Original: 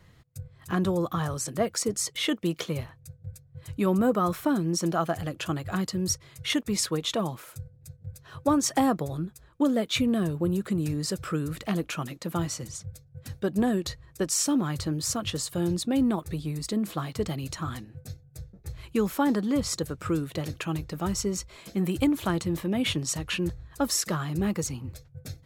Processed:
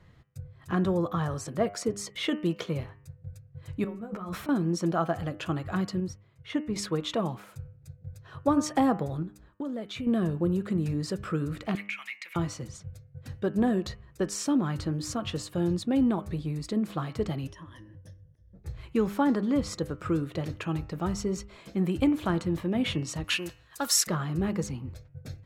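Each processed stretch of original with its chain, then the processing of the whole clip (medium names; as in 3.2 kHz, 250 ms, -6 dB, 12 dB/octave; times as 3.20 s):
3.84–4.49 s: compressor with a negative ratio -34 dBFS + three-phase chorus
6.00–6.76 s: treble shelf 3.2 kHz -11 dB + upward expansion, over -44 dBFS
9.22–10.07 s: expander -57 dBFS + compression, threshold -31 dBFS
11.75–12.36 s: resonant high-pass 2.2 kHz, resonance Q 12 + compression 4:1, threshold -28 dBFS
17.47–18.55 s: rippled EQ curve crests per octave 1.2, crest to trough 16 dB + compression 3:1, threshold -47 dBFS + slow attack 231 ms
23.24–24.07 s: tilt EQ +4.5 dB/octave + loudspeaker Doppler distortion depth 0.11 ms
whole clip: low-pass 2.5 kHz 6 dB/octave; de-hum 101.1 Hz, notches 30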